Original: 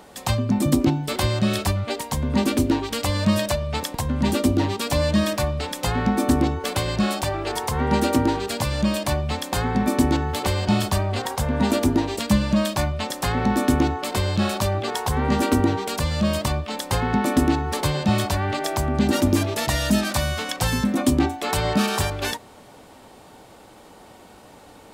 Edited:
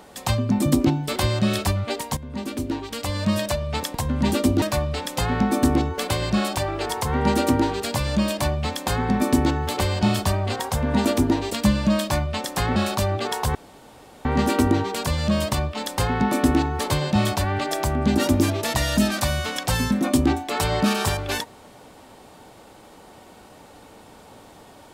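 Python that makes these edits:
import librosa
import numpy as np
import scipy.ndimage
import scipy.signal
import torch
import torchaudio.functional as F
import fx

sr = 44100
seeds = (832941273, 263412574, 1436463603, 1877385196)

y = fx.edit(x, sr, fx.fade_in_from(start_s=2.17, length_s=1.64, floor_db=-13.5),
    fx.cut(start_s=4.62, length_s=0.66),
    fx.cut(start_s=13.42, length_s=0.97),
    fx.insert_room_tone(at_s=15.18, length_s=0.7), tone=tone)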